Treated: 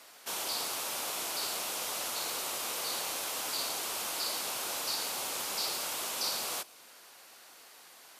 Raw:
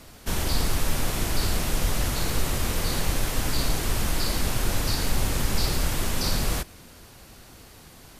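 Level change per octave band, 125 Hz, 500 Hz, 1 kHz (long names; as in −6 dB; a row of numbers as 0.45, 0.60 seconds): −33.0, −9.0, −5.0 decibels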